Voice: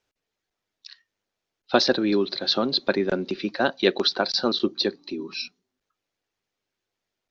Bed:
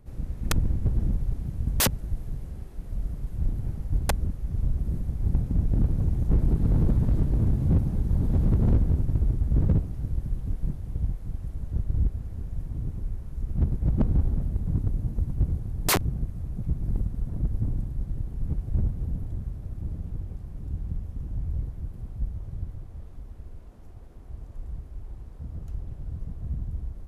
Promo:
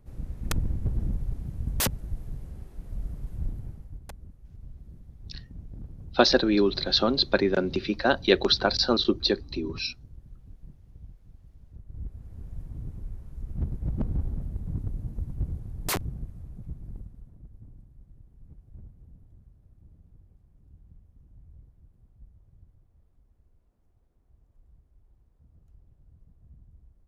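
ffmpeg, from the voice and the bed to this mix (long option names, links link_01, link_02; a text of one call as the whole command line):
ffmpeg -i stem1.wav -i stem2.wav -filter_complex "[0:a]adelay=4450,volume=0dB[link_01];[1:a]volume=9dB,afade=type=out:start_time=3.33:duration=0.66:silence=0.177828,afade=type=in:start_time=11.86:duration=0.64:silence=0.237137,afade=type=out:start_time=15.98:duration=1.4:silence=0.16788[link_02];[link_01][link_02]amix=inputs=2:normalize=0" out.wav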